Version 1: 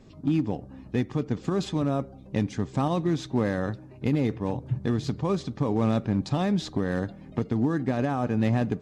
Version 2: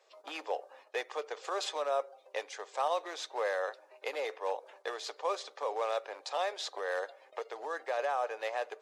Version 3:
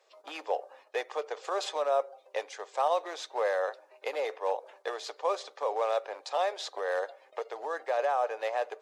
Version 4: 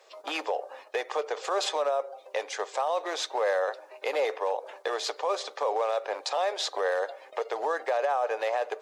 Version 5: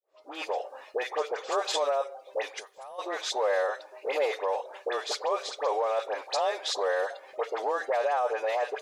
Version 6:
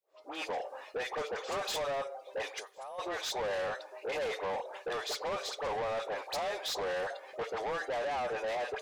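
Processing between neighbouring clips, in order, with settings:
steep high-pass 480 Hz 48 dB/oct; gate -59 dBFS, range -8 dB; vocal rider within 4 dB 2 s; gain -1 dB
dynamic EQ 650 Hz, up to +5 dB, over -45 dBFS, Q 0.88
in parallel at +2 dB: compressor, threshold -36 dBFS, peak gain reduction 13 dB; on the sum: limiter -21.5 dBFS, peak gain reduction 8.5 dB; gain +2.5 dB
opening faded in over 0.61 s; dispersion highs, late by 78 ms, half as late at 1400 Hz; spectral gain 2.59–2.99, 220–9000 Hz -16 dB
soft clip -31.5 dBFS, distortion -8 dB

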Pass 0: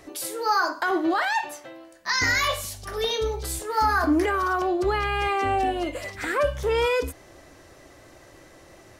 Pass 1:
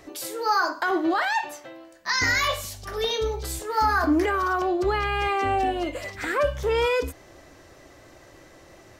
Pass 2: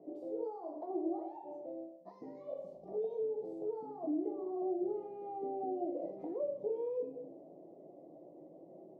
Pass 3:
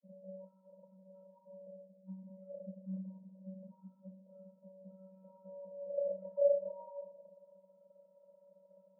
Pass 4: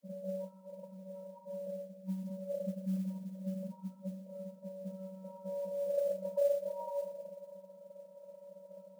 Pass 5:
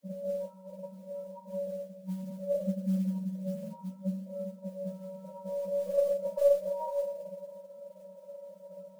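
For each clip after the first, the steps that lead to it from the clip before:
bell 10000 Hz -6 dB 0.37 oct
shoebox room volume 72 m³, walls mixed, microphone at 0.6 m; compressor, threshold -28 dBFS, peak gain reduction 13.5 dB; elliptic band-pass 170–700 Hz, stop band 40 dB; gain -4.5 dB
gate with hold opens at -50 dBFS; vocoder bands 32, square 189 Hz; band-pass sweep 220 Hz -> 1200 Hz, 4.12–7.88; gain +1.5 dB
compressor 2.5:1, threshold -45 dBFS, peak gain reduction 14 dB; modulation noise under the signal 28 dB; gain +11 dB
tracing distortion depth 0.021 ms; chorus voices 2, 0.68 Hz, delay 11 ms, depth 2 ms; gain +8 dB

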